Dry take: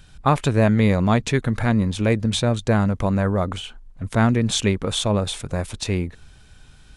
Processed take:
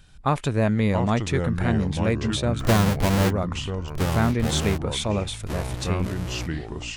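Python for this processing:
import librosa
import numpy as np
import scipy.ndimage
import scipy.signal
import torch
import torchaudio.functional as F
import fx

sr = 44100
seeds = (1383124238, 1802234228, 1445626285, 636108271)

y = fx.halfwave_hold(x, sr, at=(2.59, 3.29), fade=0.02)
y = fx.echo_pitch(y, sr, ms=615, semitones=-4, count=3, db_per_echo=-6.0)
y = F.gain(torch.from_numpy(y), -4.5).numpy()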